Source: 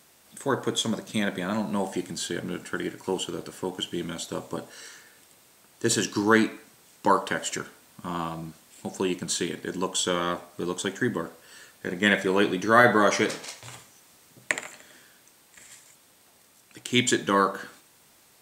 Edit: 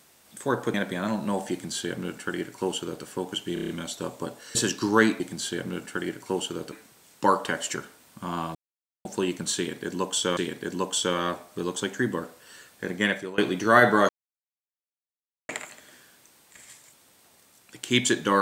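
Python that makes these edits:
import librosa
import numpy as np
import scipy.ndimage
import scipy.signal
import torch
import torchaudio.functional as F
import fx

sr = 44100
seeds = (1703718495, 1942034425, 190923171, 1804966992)

y = fx.edit(x, sr, fx.cut(start_s=0.74, length_s=0.46),
    fx.duplicate(start_s=1.98, length_s=1.52, to_s=6.54),
    fx.stutter(start_s=4.0, slice_s=0.03, count=6),
    fx.cut(start_s=4.86, length_s=1.03),
    fx.silence(start_s=8.37, length_s=0.5),
    fx.repeat(start_s=9.39, length_s=0.8, count=2),
    fx.fade_out_to(start_s=11.92, length_s=0.48, floor_db=-20.5),
    fx.silence(start_s=13.11, length_s=1.4), tone=tone)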